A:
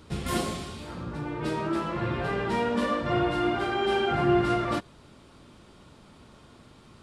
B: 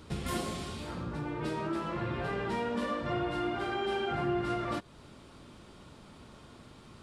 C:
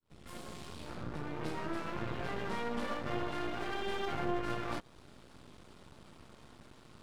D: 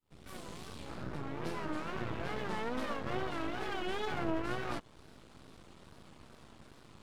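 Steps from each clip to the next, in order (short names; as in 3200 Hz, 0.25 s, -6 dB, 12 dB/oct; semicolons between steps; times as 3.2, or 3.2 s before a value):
compressor 2:1, threshold -35 dBFS, peak gain reduction 9.5 dB
opening faded in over 1.05 s; half-wave rectifier
wow and flutter 140 cents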